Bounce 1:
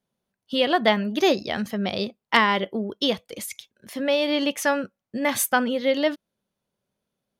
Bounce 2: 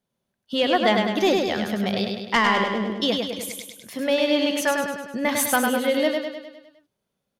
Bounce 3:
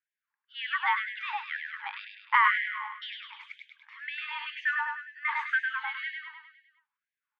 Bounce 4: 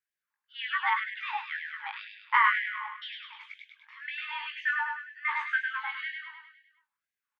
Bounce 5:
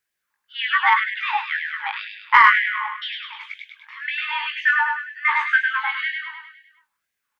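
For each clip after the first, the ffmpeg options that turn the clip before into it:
ffmpeg -i in.wav -filter_complex "[0:a]asoftclip=type=tanh:threshold=-8.5dB,asplit=2[link_01][link_02];[link_02]aecho=0:1:102|204|306|408|510|612|714:0.631|0.347|0.191|0.105|0.0577|0.0318|0.0175[link_03];[link_01][link_03]amix=inputs=2:normalize=0" out.wav
ffmpeg -i in.wav -af "afreqshift=59,lowpass=frequency=2200:width=0.5412,lowpass=frequency=2200:width=1.3066,afftfilt=real='re*gte(b*sr/1024,790*pow(1600/790,0.5+0.5*sin(2*PI*2*pts/sr)))':imag='im*gte(b*sr/1024,790*pow(1600/790,0.5+0.5*sin(2*PI*2*pts/sr)))':win_size=1024:overlap=0.75" out.wav
ffmpeg -i in.wav -filter_complex "[0:a]asplit=2[link_01][link_02];[link_02]adelay=19,volume=-5dB[link_03];[link_01][link_03]amix=inputs=2:normalize=0,volume=-1.5dB" out.wav
ffmpeg -i in.wav -af "acontrast=61,volume=4.5dB" out.wav

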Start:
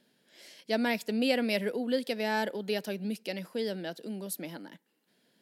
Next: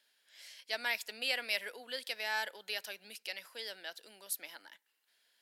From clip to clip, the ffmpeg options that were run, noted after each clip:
ffmpeg -i in.wav -af "highpass=1200" out.wav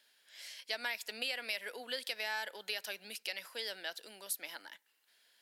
ffmpeg -i in.wav -af "acompressor=threshold=-38dB:ratio=6,volume=4dB" out.wav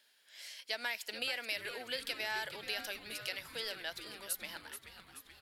ffmpeg -i in.wav -filter_complex "[0:a]asplit=9[link_01][link_02][link_03][link_04][link_05][link_06][link_07][link_08][link_09];[link_02]adelay=430,afreqshift=-130,volume=-11dB[link_10];[link_03]adelay=860,afreqshift=-260,volume=-15dB[link_11];[link_04]adelay=1290,afreqshift=-390,volume=-19dB[link_12];[link_05]adelay=1720,afreqshift=-520,volume=-23dB[link_13];[link_06]adelay=2150,afreqshift=-650,volume=-27.1dB[link_14];[link_07]adelay=2580,afreqshift=-780,volume=-31.1dB[link_15];[link_08]adelay=3010,afreqshift=-910,volume=-35.1dB[link_16];[link_09]adelay=3440,afreqshift=-1040,volume=-39.1dB[link_17];[link_01][link_10][link_11][link_12][link_13][link_14][link_15][link_16][link_17]amix=inputs=9:normalize=0" out.wav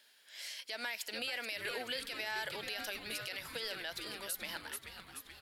ffmpeg -i in.wav -af "alimiter=level_in=8dB:limit=-24dB:level=0:latency=1:release=46,volume=-8dB,volume=4dB" out.wav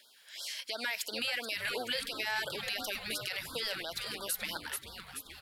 ffmpeg -i in.wav -af "afftfilt=real='re*(1-between(b*sr/1024,270*pow(2300/270,0.5+0.5*sin(2*PI*2.9*pts/sr))/1.41,270*pow(2300/270,0.5+0.5*sin(2*PI*2.9*pts/sr))*1.41))':imag='im*(1-between(b*sr/1024,270*pow(2300/270,0.5+0.5*sin(2*PI*2.9*pts/sr))/1.41,270*pow(2300/270,0.5+0.5*sin(2*PI*2.9*pts/sr))*1.41))':win_size=1024:overlap=0.75,volume=5dB" out.wav

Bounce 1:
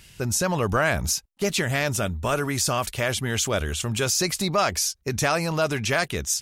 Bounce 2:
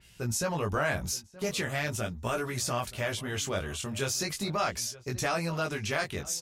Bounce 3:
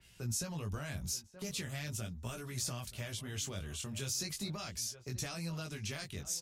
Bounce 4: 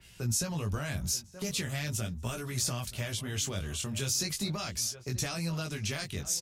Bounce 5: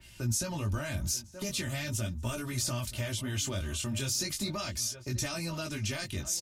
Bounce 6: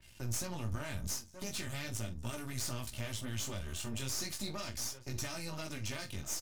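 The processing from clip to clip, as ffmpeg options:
ffmpeg -i in.wav -filter_complex "[0:a]asplit=2[link_01][link_02];[link_02]adelay=925,lowpass=frequency=2000:poles=1,volume=-19dB,asplit=2[link_03][link_04];[link_04]adelay=925,lowpass=frequency=2000:poles=1,volume=0.27[link_05];[link_01][link_03][link_05]amix=inputs=3:normalize=0,flanger=delay=16.5:depth=5.3:speed=0.39,adynamicequalizer=threshold=0.0112:dfrequency=4400:dqfactor=0.7:tfrequency=4400:tqfactor=0.7:attack=5:release=100:ratio=0.375:range=1.5:mode=cutabove:tftype=highshelf,volume=-4dB" out.wav
ffmpeg -i in.wav -filter_complex "[0:a]acrossover=split=230|3000[link_01][link_02][link_03];[link_02]acompressor=threshold=-46dB:ratio=3[link_04];[link_01][link_04][link_03]amix=inputs=3:normalize=0,volume=-4.5dB" out.wav
ffmpeg -i in.wav -filter_complex "[0:a]asplit=2[link_01][link_02];[link_02]adelay=239.1,volume=-27dB,highshelf=frequency=4000:gain=-5.38[link_03];[link_01][link_03]amix=inputs=2:normalize=0,volume=6.5dB" out.wav
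ffmpeg -i in.wav -filter_complex "[0:a]equalizer=frequency=130:width_type=o:width=0.81:gain=8,aecho=1:1:3.3:0.7,asplit=2[link_01][link_02];[link_02]alimiter=level_in=3dB:limit=-24dB:level=0:latency=1:release=37,volume=-3dB,volume=-3dB[link_03];[link_01][link_03]amix=inputs=2:normalize=0,volume=-5dB" out.wav
ffmpeg -i in.wav -filter_complex "[0:a]aeval=exprs='if(lt(val(0),0),0.251*val(0),val(0))':channel_layout=same,asplit=2[link_01][link_02];[link_02]adelay=44,volume=-13dB[link_03];[link_01][link_03]amix=inputs=2:normalize=0,volume=-3dB" out.wav

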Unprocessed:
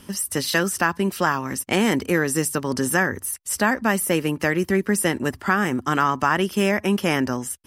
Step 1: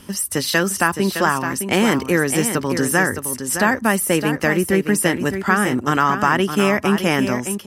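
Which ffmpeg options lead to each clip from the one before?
ffmpeg -i in.wav -af "aecho=1:1:613:0.376,volume=3dB" out.wav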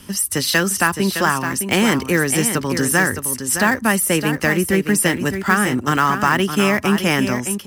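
ffmpeg -i in.wav -filter_complex "[0:a]equalizer=frequency=550:width_type=o:width=2.7:gain=-4.5,acrossover=split=370|1300|3900[link_01][link_02][link_03][link_04];[link_03]acrusher=bits=3:mode=log:mix=0:aa=0.000001[link_05];[link_01][link_02][link_05][link_04]amix=inputs=4:normalize=0,volume=3dB" out.wav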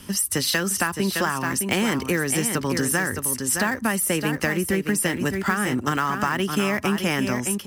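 ffmpeg -i in.wav -af "acompressor=threshold=-18dB:ratio=6,volume=-1dB" out.wav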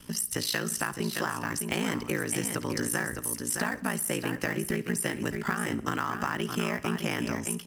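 ffmpeg -i in.wav -af "aeval=exprs='val(0)*sin(2*PI*28*n/s)':channel_layout=same,aecho=1:1:63|126|189|252:0.112|0.0606|0.0327|0.0177,volume=-4.5dB" out.wav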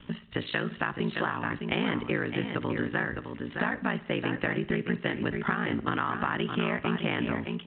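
ffmpeg -i in.wav -af "volume=1.5dB" -ar 8000 -c:a pcm_mulaw out.wav

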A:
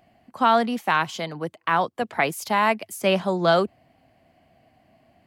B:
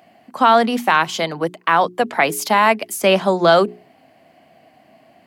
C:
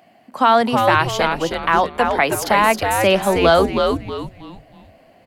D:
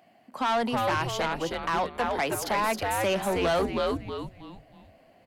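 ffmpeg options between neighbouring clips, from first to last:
ffmpeg -i in.wav -filter_complex "[0:a]highpass=190,bandreject=frequency=60:width_type=h:width=6,bandreject=frequency=120:width_type=h:width=6,bandreject=frequency=180:width_type=h:width=6,bandreject=frequency=240:width_type=h:width=6,bandreject=frequency=300:width_type=h:width=6,bandreject=frequency=360:width_type=h:width=6,bandreject=frequency=420:width_type=h:width=6,asplit=2[link_01][link_02];[link_02]alimiter=limit=-16.5dB:level=0:latency=1:release=129,volume=1.5dB[link_03];[link_01][link_03]amix=inputs=2:normalize=0,volume=2.5dB" out.wav
ffmpeg -i in.wav -filter_complex "[0:a]asplit=5[link_01][link_02][link_03][link_04][link_05];[link_02]adelay=318,afreqshift=-120,volume=-4.5dB[link_06];[link_03]adelay=636,afreqshift=-240,volume=-14.1dB[link_07];[link_04]adelay=954,afreqshift=-360,volume=-23.8dB[link_08];[link_05]adelay=1272,afreqshift=-480,volume=-33.4dB[link_09];[link_01][link_06][link_07][link_08][link_09]amix=inputs=5:normalize=0,volume=-1dB" out.wav
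ffmpeg -i in.wav -af "asoftclip=type=tanh:threshold=-13dB,volume=-7.5dB" out.wav

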